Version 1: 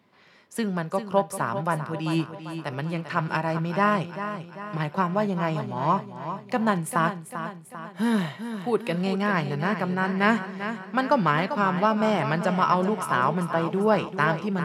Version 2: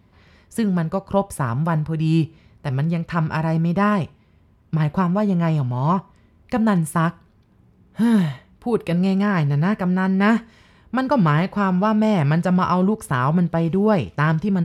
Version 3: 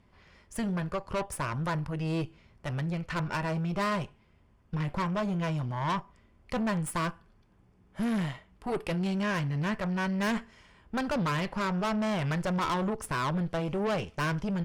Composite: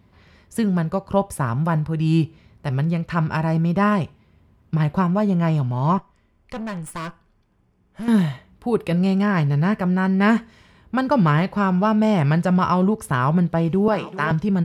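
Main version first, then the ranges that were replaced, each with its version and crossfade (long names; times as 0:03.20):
2
0:05.98–0:08.08: punch in from 3
0:13.88–0:14.31: punch in from 1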